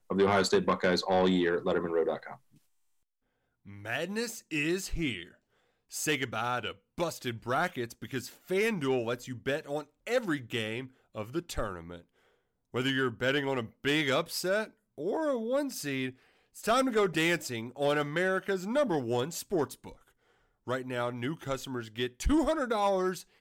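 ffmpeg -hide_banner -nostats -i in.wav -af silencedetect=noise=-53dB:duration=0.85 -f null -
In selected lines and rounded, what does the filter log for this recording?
silence_start: 2.57
silence_end: 3.66 | silence_duration: 1.08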